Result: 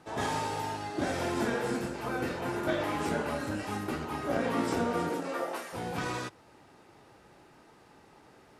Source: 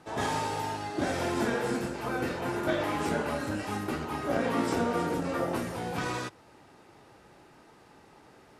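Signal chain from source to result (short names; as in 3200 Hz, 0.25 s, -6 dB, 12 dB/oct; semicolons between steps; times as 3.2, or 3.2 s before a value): 5.09–5.72 HPF 200 Hz -> 760 Hz 12 dB/oct; gain -1.5 dB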